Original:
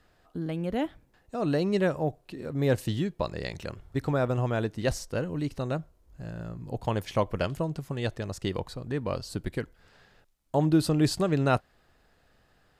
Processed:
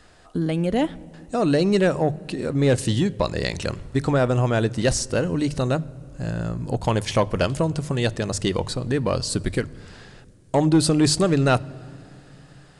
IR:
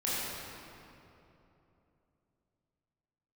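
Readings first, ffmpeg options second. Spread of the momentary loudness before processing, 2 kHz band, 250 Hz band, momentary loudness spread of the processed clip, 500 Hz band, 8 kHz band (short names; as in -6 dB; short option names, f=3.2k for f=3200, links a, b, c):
12 LU, +7.5 dB, +7.0 dB, 10 LU, +7.0 dB, +13.5 dB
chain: -filter_complex "[0:a]highshelf=f=6.1k:g=10,bandreject=f=50:t=h:w=6,bandreject=f=100:t=h:w=6,bandreject=f=150:t=h:w=6,asplit=2[a][b];[b]acompressor=threshold=-33dB:ratio=6,volume=-1dB[c];[a][c]amix=inputs=2:normalize=0,asoftclip=type=tanh:threshold=-15dB,asplit=2[d][e];[1:a]atrim=start_sample=2205,asetrate=48510,aresample=44100,lowshelf=f=220:g=11.5[f];[e][f]afir=irnorm=-1:irlink=0,volume=-30dB[g];[d][g]amix=inputs=2:normalize=0,aresample=22050,aresample=44100,volume=5.5dB"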